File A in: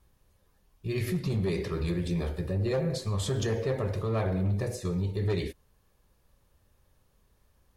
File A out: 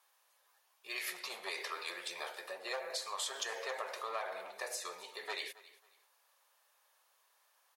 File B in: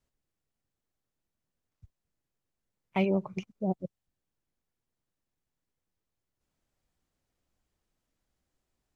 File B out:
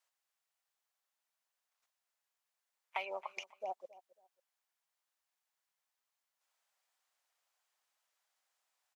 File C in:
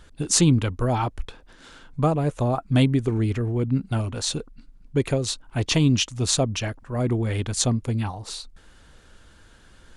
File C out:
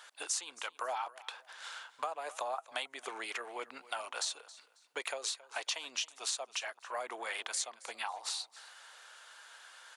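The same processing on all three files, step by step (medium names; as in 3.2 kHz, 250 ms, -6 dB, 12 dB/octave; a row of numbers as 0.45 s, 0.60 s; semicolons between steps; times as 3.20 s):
high-pass 730 Hz 24 dB/octave; compression 6:1, threshold -38 dBFS; feedback delay 272 ms, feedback 25%, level -19 dB; trim +3 dB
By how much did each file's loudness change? -10.0 LU, -11.5 LU, -15.0 LU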